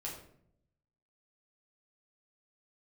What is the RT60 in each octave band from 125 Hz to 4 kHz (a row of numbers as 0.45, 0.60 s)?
1.2, 0.95, 0.80, 0.55, 0.50, 0.40 s